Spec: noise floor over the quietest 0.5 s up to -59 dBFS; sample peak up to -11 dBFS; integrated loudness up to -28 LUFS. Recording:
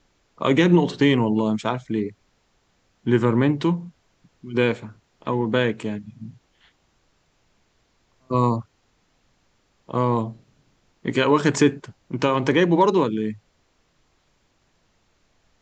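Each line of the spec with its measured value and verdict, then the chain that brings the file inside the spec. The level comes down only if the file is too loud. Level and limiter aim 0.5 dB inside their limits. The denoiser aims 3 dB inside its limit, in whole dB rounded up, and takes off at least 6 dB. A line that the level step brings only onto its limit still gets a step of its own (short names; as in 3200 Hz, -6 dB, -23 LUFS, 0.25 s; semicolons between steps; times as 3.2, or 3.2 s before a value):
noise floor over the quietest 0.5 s -65 dBFS: OK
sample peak -5.5 dBFS: fail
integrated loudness -22.0 LUFS: fail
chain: gain -6.5 dB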